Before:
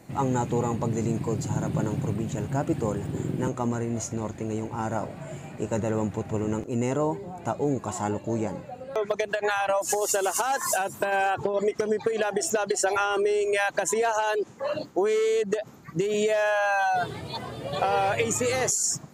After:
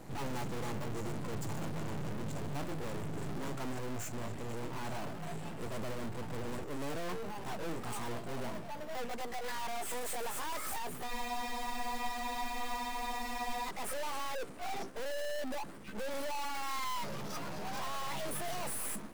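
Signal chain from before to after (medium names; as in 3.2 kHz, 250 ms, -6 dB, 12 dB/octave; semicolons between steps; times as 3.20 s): pitch bend over the whole clip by +6 st starting unshifted; in parallel at -4 dB: decimation with a swept rate 10×, swing 60% 0.87 Hz; on the sum: valve stage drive 37 dB, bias 0.65; half-wave rectifier; spectral freeze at 11.10 s, 2.57 s; trim +5.5 dB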